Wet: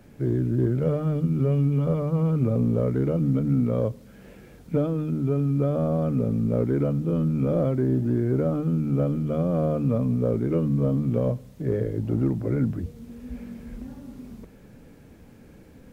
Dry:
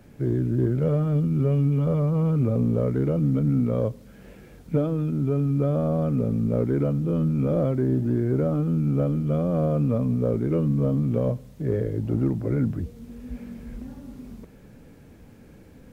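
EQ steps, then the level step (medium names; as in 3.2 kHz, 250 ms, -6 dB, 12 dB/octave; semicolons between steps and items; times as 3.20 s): hum notches 50/100/150 Hz; 0.0 dB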